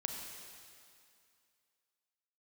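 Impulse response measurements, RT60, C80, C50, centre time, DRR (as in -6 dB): 2.4 s, 4.0 dB, 3.0 dB, 77 ms, 2.0 dB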